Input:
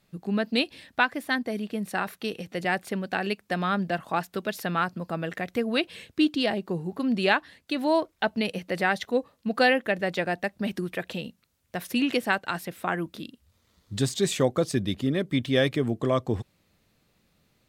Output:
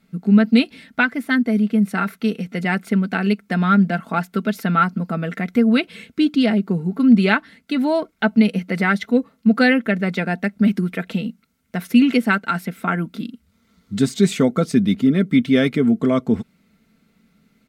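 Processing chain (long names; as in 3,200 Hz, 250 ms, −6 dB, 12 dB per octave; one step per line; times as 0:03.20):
comb filter 4.5 ms, depth 47%
hollow resonant body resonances 210/1,400/2,100 Hz, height 12 dB, ringing for 20 ms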